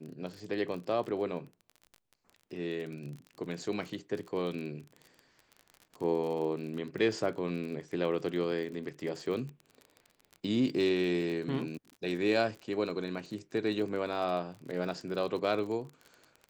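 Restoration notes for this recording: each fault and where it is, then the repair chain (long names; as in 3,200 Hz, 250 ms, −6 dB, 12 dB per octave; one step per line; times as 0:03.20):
surface crackle 35 per second −39 dBFS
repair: click removal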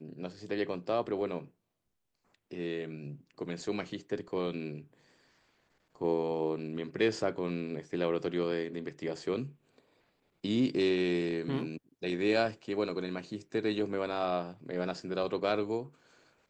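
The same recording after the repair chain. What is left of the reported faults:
none of them is left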